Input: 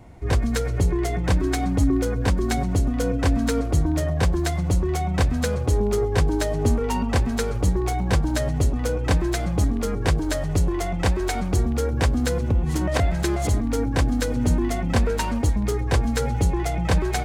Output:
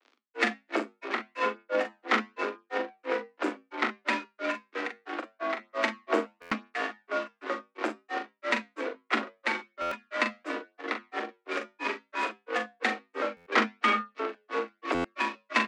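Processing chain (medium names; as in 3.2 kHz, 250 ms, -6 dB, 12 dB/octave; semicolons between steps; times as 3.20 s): high-pass 130 Hz 12 dB/octave; high-order bell 1.4 kHz +14.5 dB; upward compressor, threshold -27 dBFS; crossover distortion -29 dBFS; granulator 195 ms, grains 2.7 per s, pitch spread up and down by 0 st; one-sided clip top -30 dBFS, bottom -12.5 dBFS; frequency shift +190 Hz; flange 0.22 Hz, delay 9.7 ms, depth 2 ms, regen -78%; wide varispeed 1.1×; distance through air 140 m; doubling 41 ms -7.5 dB; buffer glitch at 6.41/9.81/13.36/14.94 s, samples 512, times 8; trim +6.5 dB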